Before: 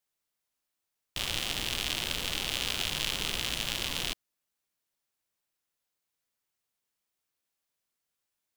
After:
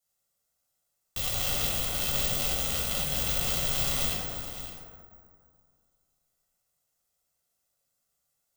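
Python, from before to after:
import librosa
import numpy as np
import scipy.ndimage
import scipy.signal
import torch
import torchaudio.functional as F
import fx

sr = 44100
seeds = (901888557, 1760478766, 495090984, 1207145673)

p1 = (np.mod(10.0 ** (15.5 / 20.0) * x + 1.0, 2.0) - 1.0) / 10.0 ** (15.5 / 20.0)
p2 = fx.curve_eq(p1, sr, hz=(480.0, 2300.0, 7000.0), db=(0, -7, 4))
p3 = fx.over_compress(p2, sr, threshold_db=-34.0, ratio=-0.5)
p4 = p3 + 0.46 * np.pad(p3, (int(1.5 * sr / 1000.0), 0))[:len(p3)]
p5 = p4 + fx.echo_single(p4, sr, ms=561, db=-12.0, dry=0)
p6 = fx.rev_plate(p5, sr, seeds[0], rt60_s=2.2, hf_ratio=0.35, predelay_ms=0, drr_db=-7.0)
p7 = (np.kron(scipy.signal.resample_poly(p6, 1, 2), np.eye(2)[0]) * 2)[:len(p6)]
p8 = fx.end_taper(p7, sr, db_per_s=140.0)
y = F.gain(torch.from_numpy(p8), -3.0).numpy()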